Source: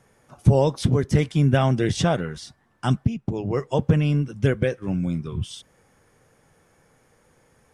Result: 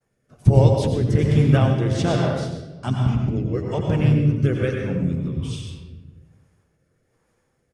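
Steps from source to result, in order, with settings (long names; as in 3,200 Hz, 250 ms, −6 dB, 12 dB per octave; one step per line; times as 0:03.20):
downward expander −52 dBFS
pitch-shifted copies added −4 semitones −7 dB
on a send at −1 dB: convolution reverb RT60 1.6 s, pre-delay 85 ms
on the sum: rotating-speaker cabinet horn 1.2 Hz
level −1 dB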